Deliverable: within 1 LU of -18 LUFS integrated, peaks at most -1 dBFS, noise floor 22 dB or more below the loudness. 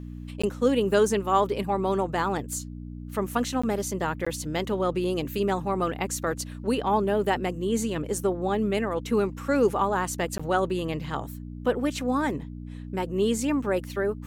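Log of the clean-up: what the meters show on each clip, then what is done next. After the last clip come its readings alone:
dropouts 4; longest dropout 15 ms; hum 60 Hz; highest harmonic 300 Hz; hum level -36 dBFS; loudness -27.0 LUFS; peak level -9.0 dBFS; loudness target -18.0 LUFS
-> interpolate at 0.42/3.62/4.25/10.38 s, 15 ms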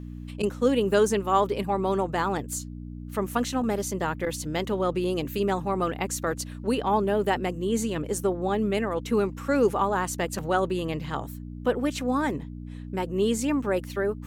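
dropouts 0; hum 60 Hz; highest harmonic 300 Hz; hum level -36 dBFS
-> de-hum 60 Hz, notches 5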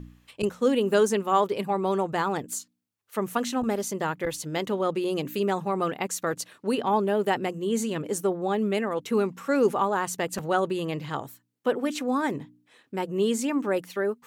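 hum not found; loudness -27.0 LUFS; peak level -9.0 dBFS; loudness target -18.0 LUFS
-> trim +9 dB; peak limiter -1 dBFS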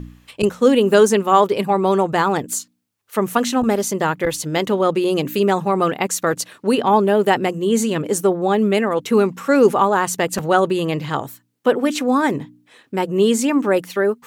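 loudness -18.0 LUFS; peak level -1.0 dBFS; noise floor -61 dBFS

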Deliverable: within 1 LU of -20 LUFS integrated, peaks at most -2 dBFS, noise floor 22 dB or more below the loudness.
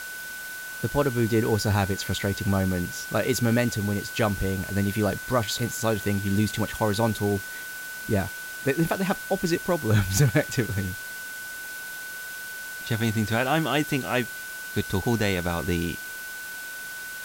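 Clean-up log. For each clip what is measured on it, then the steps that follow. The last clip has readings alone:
steady tone 1.5 kHz; tone level -35 dBFS; noise floor -37 dBFS; noise floor target -49 dBFS; loudness -26.5 LUFS; peak level -10.0 dBFS; loudness target -20.0 LUFS
-> band-stop 1.5 kHz, Q 30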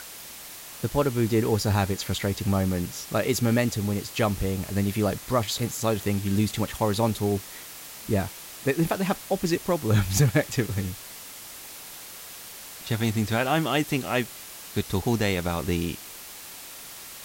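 steady tone not found; noise floor -42 dBFS; noise floor target -48 dBFS
-> noise reduction 6 dB, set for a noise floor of -42 dBFS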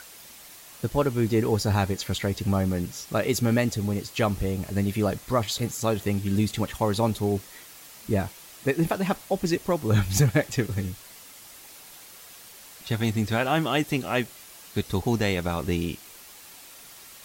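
noise floor -47 dBFS; noise floor target -49 dBFS
-> noise reduction 6 dB, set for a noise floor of -47 dBFS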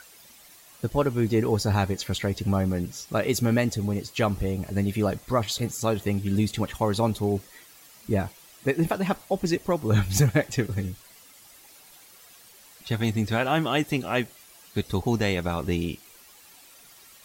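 noise floor -52 dBFS; loudness -26.5 LUFS; peak level -10.5 dBFS; loudness target -20.0 LUFS
-> trim +6.5 dB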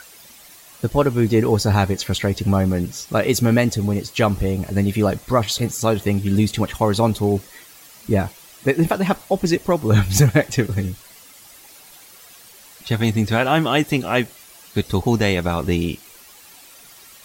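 loudness -20.0 LUFS; peak level -4.0 dBFS; noise floor -45 dBFS

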